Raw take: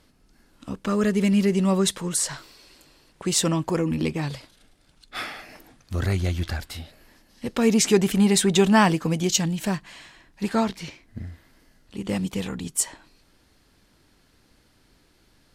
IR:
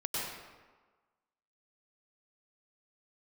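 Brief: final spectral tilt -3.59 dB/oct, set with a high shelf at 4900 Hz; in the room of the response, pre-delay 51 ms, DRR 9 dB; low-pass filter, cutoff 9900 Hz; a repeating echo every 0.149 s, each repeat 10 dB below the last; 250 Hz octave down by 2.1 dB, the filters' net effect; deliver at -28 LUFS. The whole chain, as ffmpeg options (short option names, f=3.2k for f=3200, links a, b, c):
-filter_complex "[0:a]lowpass=9.9k,equalizer=f=250:t=o:g=-3,highshelf=f=4.9k:g=6.5,aecho=1:1:149|298|447|596:0.316|0.101|0.0324|0.0104,asplit=2[a][b];[1:a]atrim=start_sample=2205,adelay=51[c];[b][c]afir=irnorm=-1:irlink=0,volume=-14.5dB[d];[a][d]amix=inputs=2:normalize=0,volume=-5.5dB"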